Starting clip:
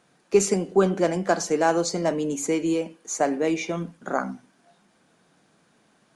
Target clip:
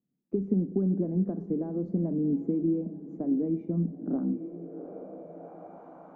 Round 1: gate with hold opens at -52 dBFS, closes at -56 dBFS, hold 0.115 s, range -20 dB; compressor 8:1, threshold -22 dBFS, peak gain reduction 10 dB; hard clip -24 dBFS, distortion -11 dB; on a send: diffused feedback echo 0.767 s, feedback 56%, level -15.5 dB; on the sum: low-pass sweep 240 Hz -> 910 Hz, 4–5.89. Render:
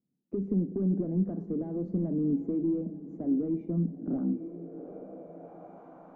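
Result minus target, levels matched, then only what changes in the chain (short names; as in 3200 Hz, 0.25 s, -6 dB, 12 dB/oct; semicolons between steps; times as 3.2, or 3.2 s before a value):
hard clip: distortion +20 dB
change: hard clip -16 dBFS, distortion -31 dB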